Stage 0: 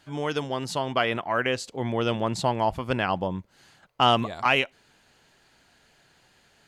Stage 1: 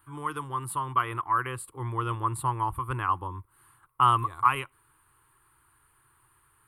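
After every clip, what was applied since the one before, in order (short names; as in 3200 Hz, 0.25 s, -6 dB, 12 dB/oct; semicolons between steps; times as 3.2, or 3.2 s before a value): EQ curve 130 Hz 0 dB, 200 Hz -24 dB, 330 Hz -4 dB, 650 Hz -23 dB, 1100 Hz +9 dB, 1600 Hz -7 dB, 3400 Hz -15 dB, 6200 Hz -28 dB, 9300 Hz +11 dB, 13000 Hz +7 dB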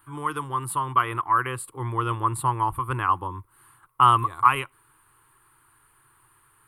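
bell 61 Hz -14 dB 0.6 oct; gain +4.5 dB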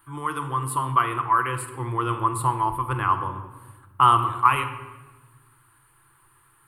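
shoebox room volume 870 m³, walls mixed, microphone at 0.76 m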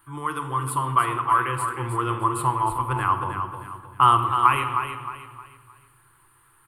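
feedback echo 0.311 s, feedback 35%, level -8 dB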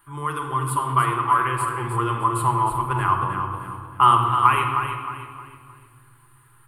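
shoebox room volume 2800 m³, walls mixed, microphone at 1.3 m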